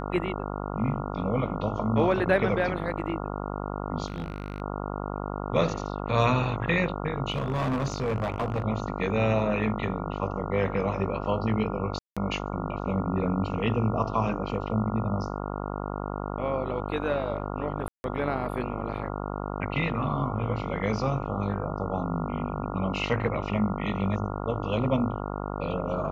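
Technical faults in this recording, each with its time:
buzz 50 Hz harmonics 28 -33 dBFS
4.06–4.62 s: clipped -27.5 dBFS
7.30–8.62 s: clipped -23 dBFS
11.99–12.17 s: dropout 176 ms
17.88–18.04 s: dropout 161 ms

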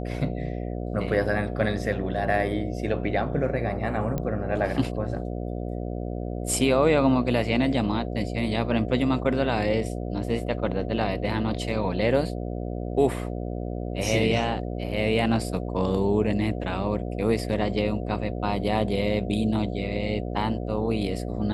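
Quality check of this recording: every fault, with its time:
buzz 60 Hz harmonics 12 -31 dBFS
4.18 s: pop -16 dBFS

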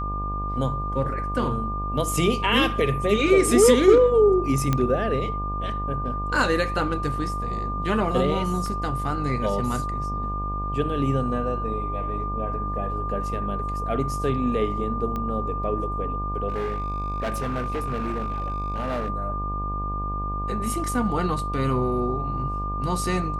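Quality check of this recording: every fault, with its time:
buzz 50 Hz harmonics 26 -30 dBFS
whine 1.2 kHz -29 dBFS
4.73 s: pop -9 dBFS
8.66 s: dropout 2.7 ms
15.16 s: pop -18 dBFS
16.48–19.10 s: clipped -23 dBFS

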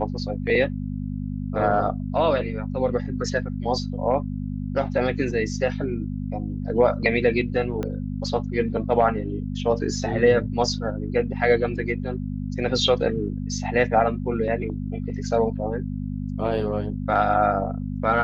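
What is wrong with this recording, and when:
hum 50 Hz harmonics 5 -29 dBFS
7.83 s: pop -16 dBFS

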